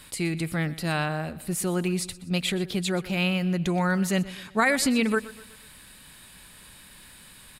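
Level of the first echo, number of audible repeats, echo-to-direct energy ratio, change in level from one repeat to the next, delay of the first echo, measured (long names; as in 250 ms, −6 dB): −18.0 dB, 3, −17.0 dB, −7.0 dB, 123 ms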